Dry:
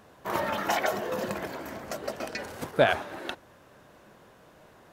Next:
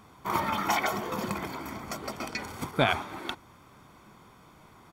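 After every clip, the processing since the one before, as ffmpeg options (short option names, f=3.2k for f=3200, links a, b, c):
-af "aecho=1:1:0.9:0.61"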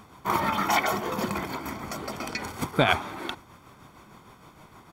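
-af "tremolo=f=6.5:d=0.44,volume=5.5dB"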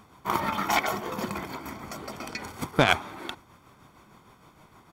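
-af "aeval=exprs='0.596*(cos(1*acos(clip(val(0)/0.596,-1,1)))-cos(1*PI/2))+0.0422*(cos(7*acos(clip(val(0)/0.596,-1,1)))-cos(7*PI/2))':c=same,volume=2dB"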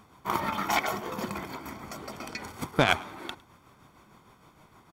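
-af "aecho=1:1:106:0.0631,volume=-2dB"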